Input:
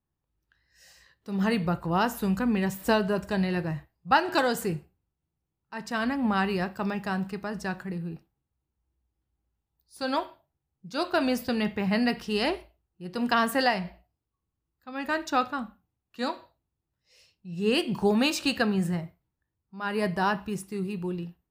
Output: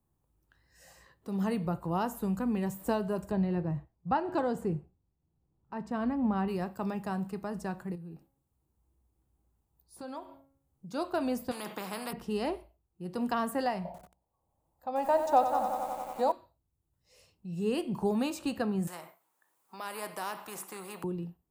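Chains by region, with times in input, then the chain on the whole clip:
0:03.31–0:06.48: low-pass filter 2,300 Hz 6 dB per octave + spectral tilt −1.5 dB per octave
0:07.95–0:10.91: hum removal 273.5 Hz, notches 8 + downward compressor 2 to 1, threshold −48 dBFS
0:11.51–0:12.13: linear-phase brick-wall high-pass 150 Hz + every bin compressed towards the loudest bin 4 to 1
0:13.85–0:16.32: flat-topped bell 700 Hz +14 dB 1.1 octaves + mains-hum notches 60/120/180/240/300/360/420 Hz + feedback echo at a low word length 91 ms, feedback 80%, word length 7 bits, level −8.5 dB
0:18.87–0:21.04: high-pass filter 940 Hz + every bin compressed towards the loudest bin 2 to 1
whole clip: flat-topped bell 2,900 Hz −8.5 dB 2.3 octaves; multiband upward and downward compressor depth 40%; level −5 dB

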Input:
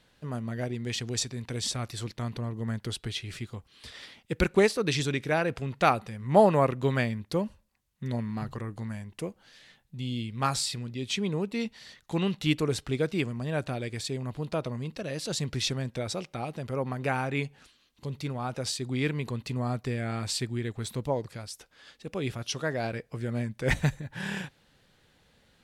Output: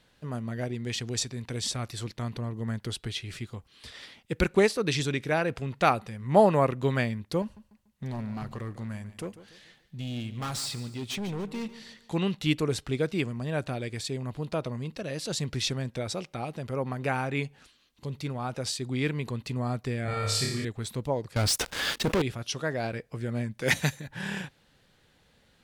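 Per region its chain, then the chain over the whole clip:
0:07.42–0:12.13: hard clipping −30.5 dBFS + repeating echo 145 ms, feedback 40%, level −15 dB
0:20.05–0:20.65: comb filter 1.7 ms, depth 45% + flutter between parallel walls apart 4.9 metres, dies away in 0.77 s
0:21.36–0:22.22: parametric band 11,000 Hz −2.5 dB 1.1 octaves + leveller curve on the samples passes 5 + envelope flattener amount 50%
0:23.61–0:24.08: high-pass filter 140 Hz + high-shelf EQ 2,800 Hz +11.5 dB + notch filter 8,000 Hz, Q 6
whole clip: no processing

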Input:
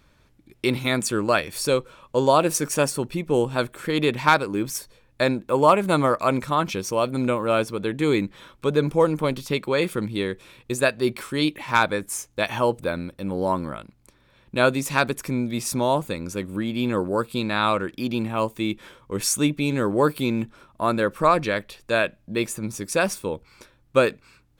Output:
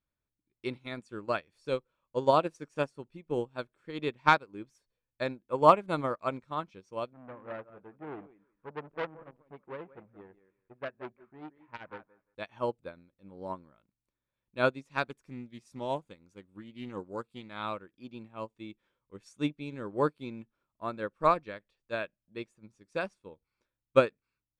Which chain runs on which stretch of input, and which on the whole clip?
0:07.13–0:12.35: low-pass filter 1,900 Hz 24 dB per octave + feedback echo with a high-pass in the loop 176 ms, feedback 18%, high-pass 220 Hz, level −8 dB + saturating transformer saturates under 1,800 Hz
0:15.10–0:17.63: high-shelf EQ 7,300 Hz +8.5 dB + highs frequency-modulated by the lows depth 0.14 ms
whole clip: low-pass filter 7,500 Hz 12 dB per octave; high-shelf EQ 5,100 Hz −7.5 dB; expander for the loud parts 2.5 to 1, over −32 dBFS; level −1.5 dB

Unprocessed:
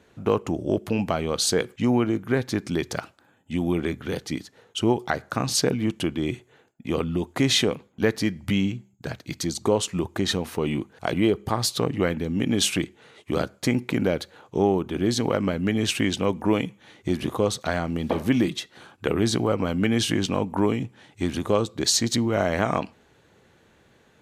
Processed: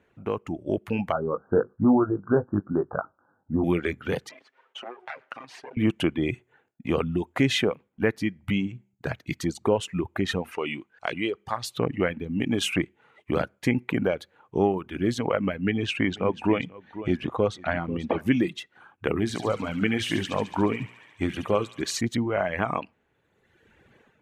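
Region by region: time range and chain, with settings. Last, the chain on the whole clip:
0:01.12–0:03.64: Butterworth low-pass 1,500 Hz 96 dB per octave + double-tracking delay 20 ms −6 dB + one half of a high-frequency compander encoder only
0:04.29–0:05.77: lower of the sound and its delayed copy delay 7.6 ms + downward compressor 16 to 1, threshold −34 dBFS + band-pass filter 470–5,000 Hz
0:10.51–0:11.65: low-pass filter 5,700 Hz + spectral tilt +3 dB per octave
0:15.57–0:18.21: low-pass filter 5,600 Hz + single-tap delay 489 ms −13 dB
0:19.20–0:22.01: mains-hum notches 60/120/180/240/300/360/420/480 Hz + delay with a high-pass on its return 71 ms, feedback 77%, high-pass 1,600 Hz, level −3.5 dB
whole clip: reverb reduction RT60 1.4 s; high shelf with overshoot 3,300 Hz −8 dB, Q 1.5; automatic gain control; level −7.5 dB

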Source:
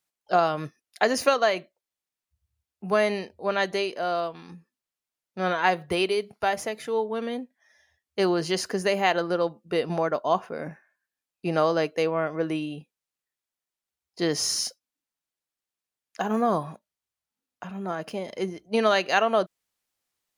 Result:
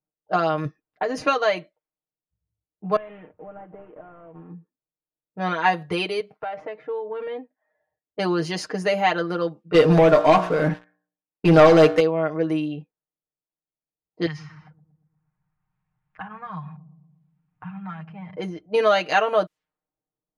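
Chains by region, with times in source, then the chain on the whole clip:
0:00.65–0:01.27: spectral tilt −2 dB per octave + downward compressor 12 to 1, threshold −22 dBFS
0:02.96–0:04.50: variable-slope delta modulation 16 kbit/s + downward compressor 8 to 1, threshold −39 dBFS
0:06.20–0:08.19: bass and treble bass −9 dB, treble −7 dB + downward compressor 10 to 1, threshold −29 dBFS
0:09.74–0:12.00: hum removal 59.59 Hz, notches 31 + leveller curve on the samples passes 3 + one half of a high-frequency compander encoder only
0:14.26–0:18.36: drawn EQ curve 170 Hz 0 dB, 250 Hz −23 dB, 560 Hz −28 dB, 830 Hz −7 dB, 2,400 Hz 0 dB, 4,500 Hz −8 dB, 7,900 Hz −13 dB + delay with a low-pass on its return 117 ms, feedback 36%, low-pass 400 Hz, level −11 dB + multiband upward and downward compressor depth 100%
whole clip: low-pass filter 3,900 Hz 6 dB per octave; low-pass that shuts in the quiet parts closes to 540 Hz, open at −24 dBFS; comb filter 6.5 ms, depth 87%

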